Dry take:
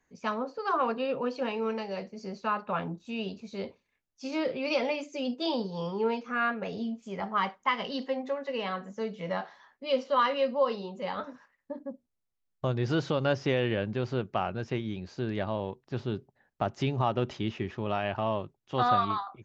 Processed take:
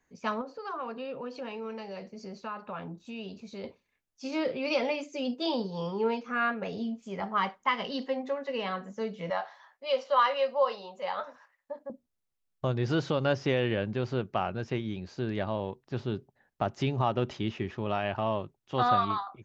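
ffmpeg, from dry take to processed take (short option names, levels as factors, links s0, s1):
-filter_complex "[0:a]asettb=1/sr,asplit=3[s0][s1][s2];[s0]atrim=end=0.414[s3];[s1]atrim=start=0.41:end=3.64,asetpts=PTS-STARTPTS,afade=t=in:d=0.004:c=qsin,afade=t=out:st=3.226:d=0.004:c=qsin,acompressor=threshold=0.01:ratio=2:attack=3.2:release=140:knee=1:detection=peak[s4];[s2]atrim=start=3.636[s5];[s3][s4]acrossfade=d=0.004:c1=hsin:c2=qsin[s6];[s6][s5]acrossfade=d=0.004:c1=qsin:c2=hsin,asettb=1/sr,asplit=3[s7][s8][s9];[s7]atrim=end=9.304[s10];[s8]atrim=start=9.3:end=11.9,asetpts=PTS-STARTPTS,afade=t=in:d=0.004:c=qsin,afade=t=out:st=2.596:d=0.004:c=qsin,lowshelf=f=440:t=q:w=1.5:g=-11.5[s11];[s9]atrim=start=11.896[s12];[s10][s11]acrossfade=d=0.004:c1=hsin:c2=qsin[s13];[s13][s12]acrossfade=d=0.004:c1=qsin:c2=hsin"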